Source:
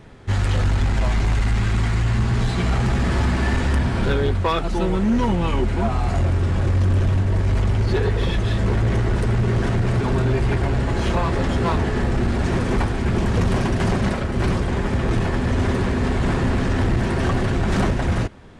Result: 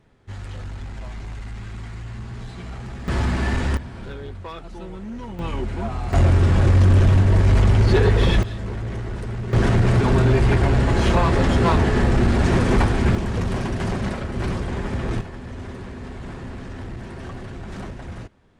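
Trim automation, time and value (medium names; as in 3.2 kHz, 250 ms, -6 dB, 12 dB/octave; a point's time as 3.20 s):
-14 dB
from 3.08 s -2 dB
from 3.77 s -14.5 dB
from 5.39 s -6 dB
from 6.13 s +4 dB
from 8.43 s -9 dB
from 9.53 s +3 dB
from 13.15 s -4.5 dB
from 15.21 s -14 dB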